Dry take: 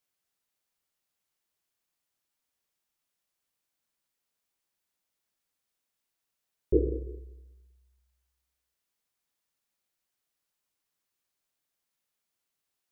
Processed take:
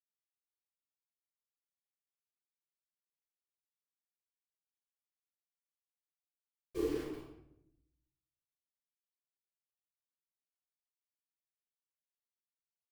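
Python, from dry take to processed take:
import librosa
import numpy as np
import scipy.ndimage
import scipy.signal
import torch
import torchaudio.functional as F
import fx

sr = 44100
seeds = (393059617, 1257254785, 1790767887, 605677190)

y = fx.doppler_pass(x, sr, speed_mps=18, closest_m=5.1, pass_at_s=3.0)
y = fx.highpass(y, sr, hz=480.0, slope=6)
y = fx.leveller(y, sr, passes=1)
y = fx.quant_dither(y, sr, seeds[0], bits=10, dither='none')
y = fx.room_shoebox(y, sr, seeds[1], volume_m3=200.0, walls='mixed', distance_m=5.9)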